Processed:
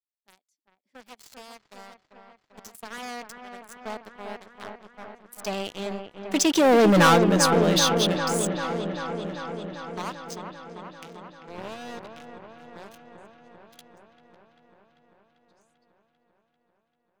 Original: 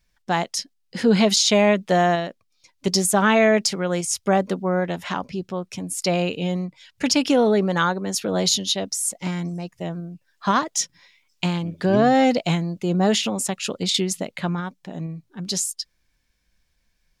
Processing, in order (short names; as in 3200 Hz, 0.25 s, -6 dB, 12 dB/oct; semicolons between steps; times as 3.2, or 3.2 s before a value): one-sided fold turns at -11.5 dBFS; Doppler pass-by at 7.01, 34 m/s, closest 4.5 m; low shelf 100 Hz -11 dB; notch 5600 Hz, Q 15; sample leveller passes 5; on a send: dark delay 0.393 s, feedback 73%, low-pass 2100 Hz, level -6 dB; on the sum: gain -3.5 dB